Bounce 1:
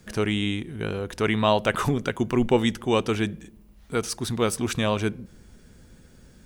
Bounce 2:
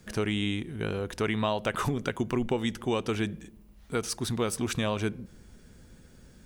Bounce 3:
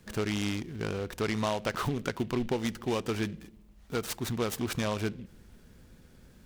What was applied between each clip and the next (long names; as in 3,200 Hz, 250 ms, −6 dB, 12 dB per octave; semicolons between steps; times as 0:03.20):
downward compressor 6 to 1, threshold −22 dBFS, peak gain reduction 8.5 dB; level −2 dB
short delay modulated by noise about 2,400 Hz, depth 0.041 ms; level −2 dB